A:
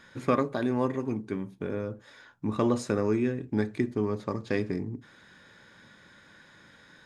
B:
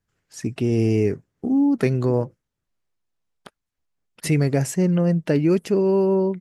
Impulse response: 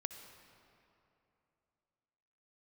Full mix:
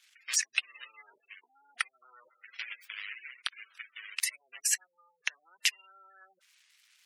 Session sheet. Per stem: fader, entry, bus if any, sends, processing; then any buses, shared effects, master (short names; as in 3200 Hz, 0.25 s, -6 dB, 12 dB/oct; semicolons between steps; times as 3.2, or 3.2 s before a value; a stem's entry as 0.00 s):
-2.0 dB, 0.00 s, no send, noise-modulated delay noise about 1900 Hz, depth 0.22 ms
-4.0 dB, 0.00 s, send -7 dB, sample leveller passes 5; negative-ratio compressor -17 dBFS, ratio -0.5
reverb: on, RT60 2.9 s, pre-delay 57 ms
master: spectral gate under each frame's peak -20 dB strong; ladder high-pass 1600 Hz, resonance 30%; compressor 2:1, threshold -30 dBFS, peak gain reduction 9 dB